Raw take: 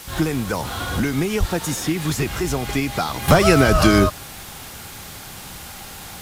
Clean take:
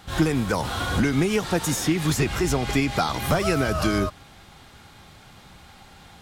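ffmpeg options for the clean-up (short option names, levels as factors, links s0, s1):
-filter_complex "[0:a]asplit=3[s0][s1][s2];[s0]afade=t=out:st=1.39:d=0.02[s3];[s1]highpass=f=140:w=0.5412,highpass=f=140:w=1.3066,afade=t=in:st=1.39:d=0.02,afade=t=out:st=1.51:d=0.02[s4];[s2]afade=t=in:st=1.51:d=0.02[s5];[s3][s4][s5]amix=inputs=3:normalize=0,asplit=3[s6][s7][s8];[s6]afade=t=out:st=3.71:d=0.02[s9];[s7]highpass=f=140:w=0.5412,highpass=f=140:w=1.3066,afade=t=in:st=3.71:d=0.02,afade=t=out:st=3.83:d=0.02[s10];[s8]afade=t=in:st=3.83:d=0.02[s11];[s9][s10][s11]amix=inputs=3:normalize=0,afwtdn=0.013,asetnsamples=n=441:p=0,asendcmd='3.28 volume volume -8.5dB',volume=1"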